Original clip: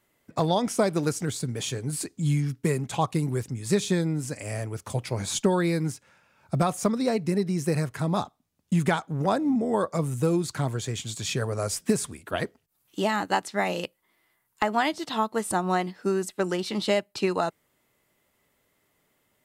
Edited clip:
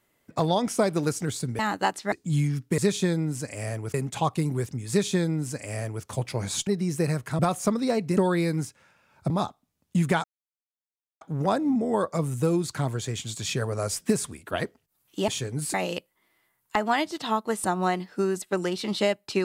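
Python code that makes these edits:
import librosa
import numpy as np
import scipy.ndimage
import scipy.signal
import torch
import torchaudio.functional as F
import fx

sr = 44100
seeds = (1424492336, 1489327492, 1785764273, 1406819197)

y = fx.edit(x, sr, fx.swap(start_s=1.59, length_s=0.46, other_s=13.08, other_length_s=0.53),
    fx.duplicate(start_s=3.66, length_s=1.16, to_s=2.71),
    fx.swap(start_s=5.44, length_s=1.13, other_s=7.35, other_length_s=0.72),
    fx.insert_silence(at_s=9.01, length_s=0.97), tone=tone)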